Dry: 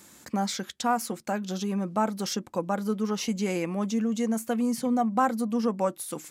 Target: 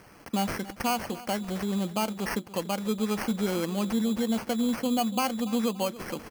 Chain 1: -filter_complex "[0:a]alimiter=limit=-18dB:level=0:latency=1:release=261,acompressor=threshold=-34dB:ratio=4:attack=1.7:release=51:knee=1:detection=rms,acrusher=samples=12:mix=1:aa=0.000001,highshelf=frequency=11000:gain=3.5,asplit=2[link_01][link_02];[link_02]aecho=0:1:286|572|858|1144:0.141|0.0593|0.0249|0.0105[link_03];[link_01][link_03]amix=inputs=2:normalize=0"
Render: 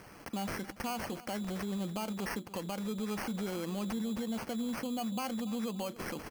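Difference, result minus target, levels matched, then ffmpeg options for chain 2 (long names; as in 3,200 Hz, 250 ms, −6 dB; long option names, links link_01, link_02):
downward compressor: peak gain reduction +11 dB
-filter_complex "[0:a]alimiter=limit=-18dB:level=0:latency=1:release=261,acrusher=samples=12:mix=1:aa=0.000001,highshelf=frequency=11000:gain=3.5,asplit=2[link_01][link_02];[link_02]aecho=0:1:286|572|858|1144:0.141|0.0593|0.0249|0.0105[link_03];[link_01][link_03]amix=inputs=2:normalize=0"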